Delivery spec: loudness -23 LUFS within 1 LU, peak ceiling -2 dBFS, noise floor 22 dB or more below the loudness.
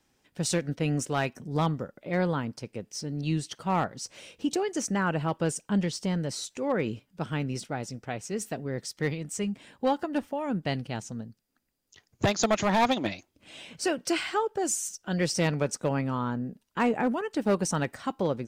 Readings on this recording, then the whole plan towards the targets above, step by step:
clipped 0.5%; flat tops at -18.0 dBFS; loudness -29.5 LUFS; peak -18.0 dBFS; loudness target -23.0 LUFS
-> clip repair -18 dBFS; gain +6.5 dB

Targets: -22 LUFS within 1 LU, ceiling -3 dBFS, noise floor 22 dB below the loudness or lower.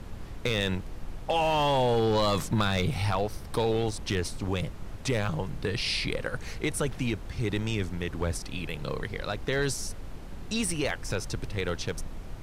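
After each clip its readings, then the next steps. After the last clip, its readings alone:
clipped 0.5%; flat tops at -18.0 dBFS; noise floor -41 dBFS; noise floor target -52 dBFS; loudness -30.0 LUFS; peak -18.0 dBFS; loudness target -22.0 LUFS
-> clip repair -18 dBFS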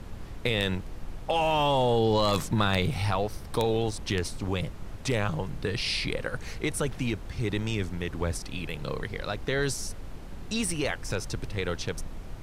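clipped 0.0%; noise floor -41 dBFS; noise floor target -52 dBFS
-> noise print and reduce 11 dB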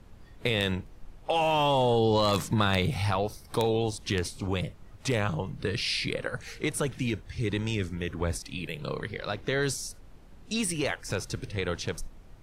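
noise floor -51 dBFS; noise floor target -52 dBFS
-> noise print and reduce 6 dB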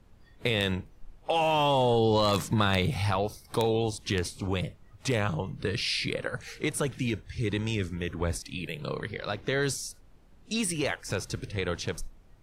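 noise floor -56 dBFS; loudness -29.5 LUFS; peak -9.0 dBFS; loudness target -22.0 LUFS
-> gain +7.5 dB; limiter -3 dBFS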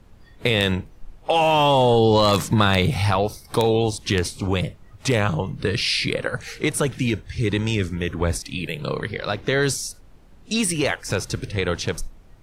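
loudness -22.0 LUFS; peak -3.0 dBFS; noise floor -48 dBFS

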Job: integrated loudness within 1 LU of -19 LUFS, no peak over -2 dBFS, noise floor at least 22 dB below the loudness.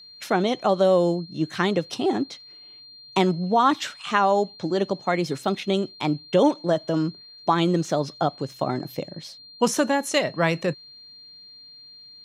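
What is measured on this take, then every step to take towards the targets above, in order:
steady tone 4200 Hz; tone level -44 dBFS; loudness -24.0 LUFS; peak -6.0 dBFS; loudness target -19.0 LUFS
-> notch 4200 Hz, Q 30; gain +5 dB; limiter -2 dBFS

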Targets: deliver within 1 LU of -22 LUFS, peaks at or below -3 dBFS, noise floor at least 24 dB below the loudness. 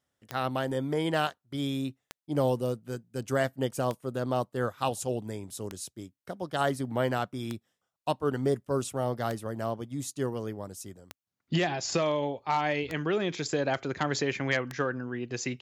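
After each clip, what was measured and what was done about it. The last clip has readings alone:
clicks 9; loudness -31.0 LUFS; peak -13.5 dBFS; loudness target -22.0 LUFS
-> de-click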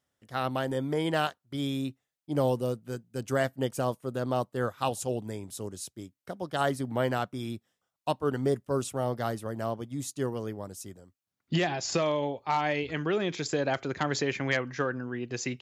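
clicks 0; loudness -31.0 LUFS; peak -13.5 dBFS; loudness target -22.0 LUFS
-> gain +9 dB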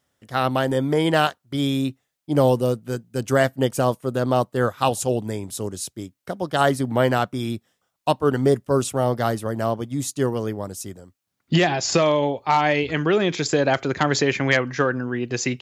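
loudness -22.0 LUFS; peak -4.5 dBFS; noise floor -78 dBFS

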